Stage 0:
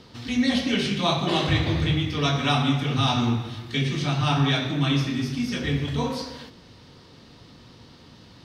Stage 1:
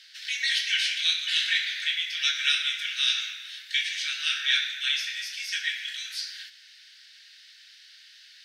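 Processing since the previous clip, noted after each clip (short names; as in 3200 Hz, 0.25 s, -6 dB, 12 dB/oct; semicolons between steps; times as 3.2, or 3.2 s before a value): steep high-pass 1500 Hz 96 dB/oct; gain +4 dB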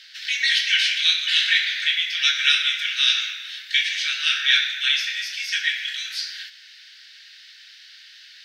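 bell 9700 Hz -8 dB 1.1 oct; gain +7 dB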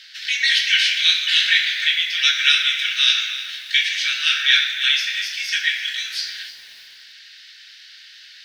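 lo-fi delay 0.307 s, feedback 35%, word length 7-bit, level -14 dB; gain +2.5 dB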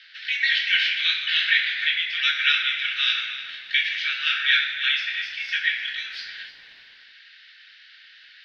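air absorption 340 m; gain +1.5 dB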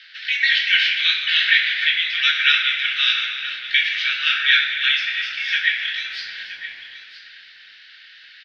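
echo 0.972 s -13.5 dB; gain +4 dB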